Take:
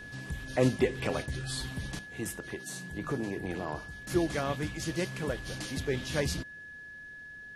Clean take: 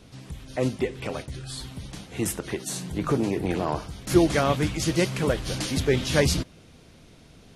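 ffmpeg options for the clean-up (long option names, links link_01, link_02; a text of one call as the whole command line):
ffmpeg -i in.wav -af "bandreject=frequency=1700:width=30,asetnsamples=nb_out_samples=441:pad=0,asendcmd='1.99 volume volume 9.5dB',volume=0dB" out.wav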